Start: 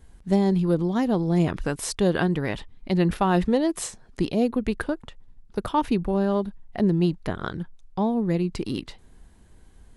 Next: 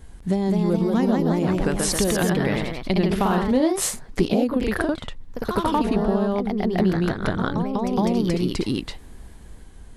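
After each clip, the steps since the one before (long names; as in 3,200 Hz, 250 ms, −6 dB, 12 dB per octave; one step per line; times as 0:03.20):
downward compressor, threshold −27 dBFS, peak gain reduction 11.5 dB
delay with pitch and tempo change per echo 226 ms, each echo +1 semitone, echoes 3
level +7.5 dB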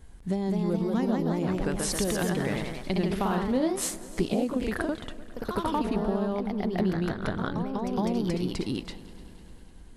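echo machine with several playback heads 100 ms, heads second and third, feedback 63%, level −20.5 dB
level −6.5 dB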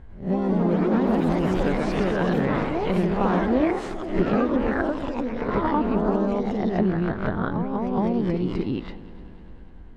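peak hold with a rise ahead of every peak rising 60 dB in 0.35 s
low-pass filter 1,900 Hz 12 dB per octave
delay with pitch and tempo change per echo 103 ms, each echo +5 semitones, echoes 3, each echo −6 dB
level +3.5 dB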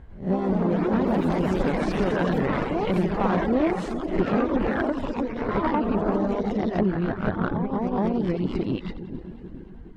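echo with a time of its own for lows and highs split 410 Hz, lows 421 ms, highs 87 ms, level −9.5 dB
tube saturation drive 16 dB, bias 0.5
reverb reduction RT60 0.57 s
level +2.5 dB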